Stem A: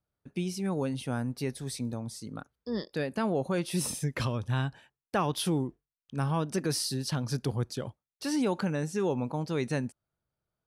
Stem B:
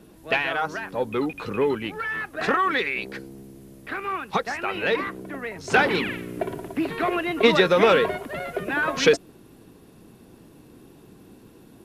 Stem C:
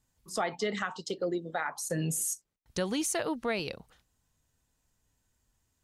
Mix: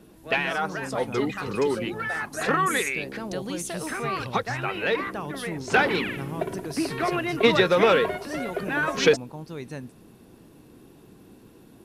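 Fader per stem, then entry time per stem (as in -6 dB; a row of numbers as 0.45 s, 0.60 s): -6.0 dB, -1.5 dB, -2.5 dB; 0.00 s, 0.00 s, 0.55 s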